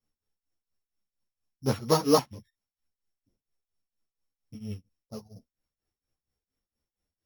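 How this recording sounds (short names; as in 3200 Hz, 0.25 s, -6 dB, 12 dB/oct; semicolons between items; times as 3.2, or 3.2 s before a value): a buzz of ramps at a fixed pitch in blocks of 8 samples; tremolo triangle 4.3 Hz, depth 95%; a shimmering, thickened sound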